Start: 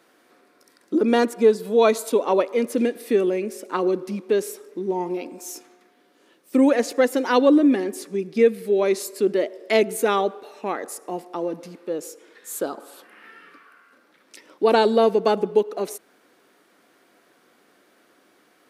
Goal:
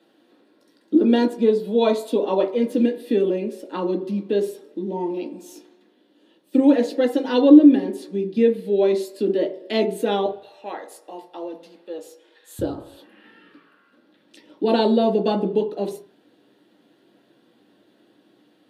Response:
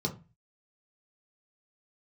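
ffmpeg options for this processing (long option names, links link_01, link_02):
-filter_complex "[0:a]asetnsamples=nb_out_samples=441:pad=0,asendcmd='10.26 highpass f 620;12.59 highpass f 100',highpass=210[link_01];[1:a]atrim=start_sample=2205,asetrate=33516,aresample=44100[link_02];[link_01][link_02]afir=irnorm=-1:irlink=0,volume=-9.5dB"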